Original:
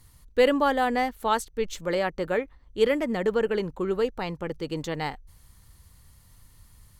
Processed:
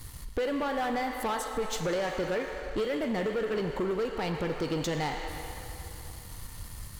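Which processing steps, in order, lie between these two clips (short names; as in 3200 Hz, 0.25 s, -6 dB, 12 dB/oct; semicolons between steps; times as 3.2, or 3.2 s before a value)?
compressor 12:1, threshold -35 dBFS, peak gain reduction 20.5 dB; on a send at -5 dB: weighting filter A + reverb RT60 3.3 s, pre-delay 11 ms; on the sum: sample leveller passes 3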